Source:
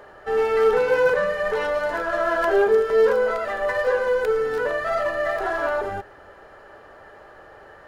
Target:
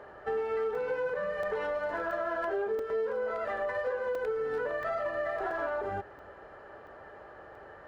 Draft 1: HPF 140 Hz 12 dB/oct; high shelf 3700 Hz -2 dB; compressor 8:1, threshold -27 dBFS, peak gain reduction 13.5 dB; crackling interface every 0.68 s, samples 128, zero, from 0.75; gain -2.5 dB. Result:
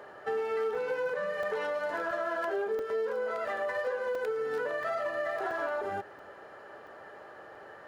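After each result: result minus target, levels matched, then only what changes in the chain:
8000 Hz band +7.0 dB; 125 Hz band -5.0 dB
change: high shelf 3700 Hz -13 dB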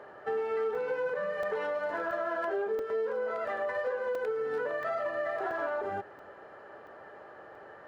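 125 Hz band -4.5 dB
change: HPF 39 Hz 12 dB/oct

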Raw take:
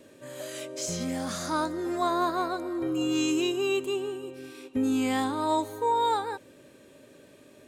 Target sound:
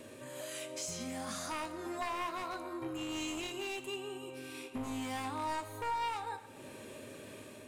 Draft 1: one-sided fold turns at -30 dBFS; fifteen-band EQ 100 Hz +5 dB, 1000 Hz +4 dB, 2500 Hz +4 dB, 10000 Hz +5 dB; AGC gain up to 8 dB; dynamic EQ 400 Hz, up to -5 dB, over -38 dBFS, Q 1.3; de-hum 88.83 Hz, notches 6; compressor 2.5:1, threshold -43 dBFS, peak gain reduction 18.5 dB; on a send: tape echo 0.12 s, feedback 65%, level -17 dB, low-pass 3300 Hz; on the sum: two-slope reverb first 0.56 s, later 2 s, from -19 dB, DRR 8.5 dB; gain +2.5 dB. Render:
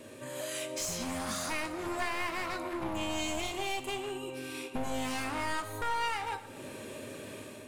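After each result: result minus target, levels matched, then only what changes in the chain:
one-sided fold: distortion +10 dB; compressor: peak gain reduction -6 dB
change: one-sided fold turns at -24 dBFS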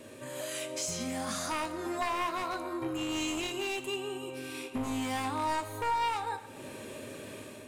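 compressor: peak gain reduction -5.5 dB
change: compressor 2.5:1, threshold -52 dBFS, peak gain reduction 24 dB

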